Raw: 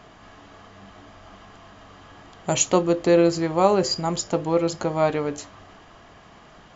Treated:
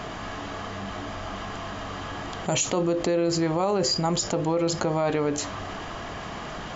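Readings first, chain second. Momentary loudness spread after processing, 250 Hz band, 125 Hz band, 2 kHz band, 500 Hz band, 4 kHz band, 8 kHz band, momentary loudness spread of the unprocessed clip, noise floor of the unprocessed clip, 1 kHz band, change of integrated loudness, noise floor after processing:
11 LU, -2.5 dB, 0.0 dB, +1.0 dB, -4.0 dB, +1.5 dB, n/a, 9 LU, -49 dBFS, -2.5 dB, -5.5 dB, -36 dBFS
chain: limiter -16.5 dBFS, peak gain reduction 11 dB; fast leveller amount 50%

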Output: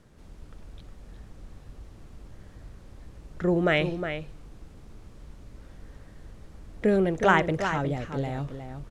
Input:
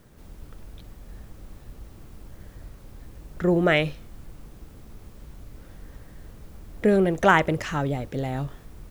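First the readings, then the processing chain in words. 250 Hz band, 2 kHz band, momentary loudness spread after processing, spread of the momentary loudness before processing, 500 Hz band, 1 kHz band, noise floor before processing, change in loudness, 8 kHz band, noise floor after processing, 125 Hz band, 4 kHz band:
-2.5 dB, -2.5 dB, 13 LU, 12 LU, -2.5 dB, -2.5 dB, -48 dBFS, -3.0 dB, n/a, -50 dBFS, -2.5 dB, -2.5 dB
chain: LPF 8400 Hz 12 dB/oct; outdoor echo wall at 62 m, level -8 dB; gain -3 dB

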